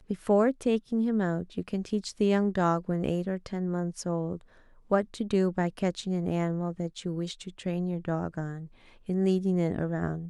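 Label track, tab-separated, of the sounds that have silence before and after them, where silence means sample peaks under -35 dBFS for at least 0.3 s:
4.910000	8.640000	sound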